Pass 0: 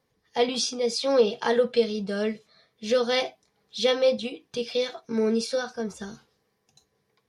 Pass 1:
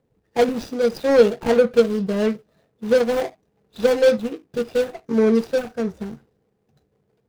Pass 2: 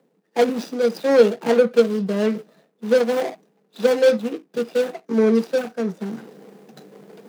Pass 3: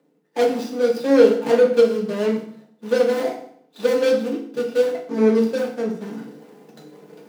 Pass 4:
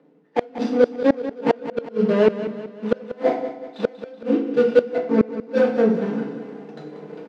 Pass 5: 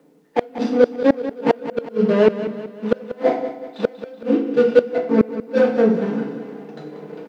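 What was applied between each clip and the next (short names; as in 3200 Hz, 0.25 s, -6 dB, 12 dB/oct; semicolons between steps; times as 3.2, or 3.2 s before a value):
median filter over 41 samples; gain +8 dB
reverse; upward compressor, threshold -23 dBFS; reverse; steep high-pass 160 Hz 72 dB/oct
FDN reverb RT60 0.61 s, low-frequency decay 1.25×, high-frequency decay 0.9×, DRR 0 dB; gain -3.5 dB
flipped gate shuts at -11 dBFS, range -31 dB; Bessel low-pass 2400 Hz, order 2; feedback echo 0.188 s, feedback 49%, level -12.5 dB; gain +7 dB
requantised 12-bit, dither none; gain +2 dB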